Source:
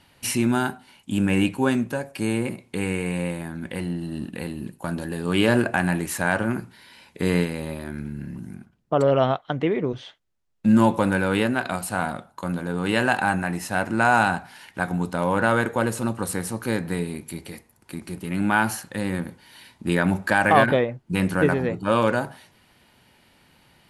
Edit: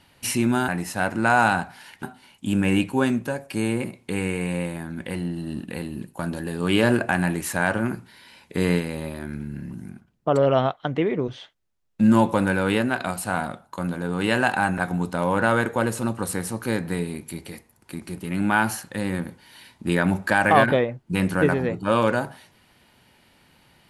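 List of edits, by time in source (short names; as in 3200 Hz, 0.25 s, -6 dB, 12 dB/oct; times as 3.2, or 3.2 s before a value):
13.43–14.78 move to 0.68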